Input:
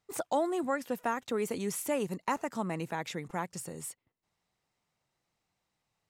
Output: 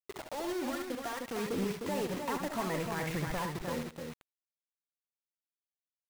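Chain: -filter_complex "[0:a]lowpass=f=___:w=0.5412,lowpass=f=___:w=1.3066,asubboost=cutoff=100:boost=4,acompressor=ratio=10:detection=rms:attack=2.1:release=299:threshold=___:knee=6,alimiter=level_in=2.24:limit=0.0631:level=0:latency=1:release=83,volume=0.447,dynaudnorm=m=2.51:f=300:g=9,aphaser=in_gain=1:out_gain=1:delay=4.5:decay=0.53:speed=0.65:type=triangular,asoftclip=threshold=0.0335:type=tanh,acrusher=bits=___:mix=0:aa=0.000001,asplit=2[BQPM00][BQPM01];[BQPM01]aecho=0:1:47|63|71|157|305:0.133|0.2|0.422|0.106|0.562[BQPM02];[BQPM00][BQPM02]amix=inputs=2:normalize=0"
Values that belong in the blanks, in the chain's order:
2.3k, 2.3k, 0.0251, 6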